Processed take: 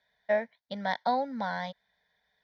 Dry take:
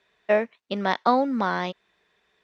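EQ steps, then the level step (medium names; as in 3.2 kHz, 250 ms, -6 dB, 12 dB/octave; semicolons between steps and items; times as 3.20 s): static phaser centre 1.8 kHz, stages 8; -4.5 dB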